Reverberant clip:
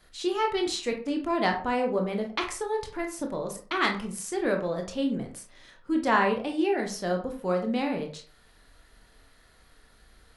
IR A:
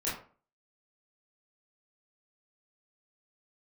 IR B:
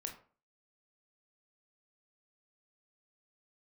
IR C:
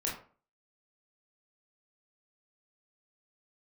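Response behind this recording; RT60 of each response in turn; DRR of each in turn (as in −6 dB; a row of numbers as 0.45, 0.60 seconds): B; 0.40, 0.40, 0.40 seconds; −9.0, 3.0, −4.0 decibels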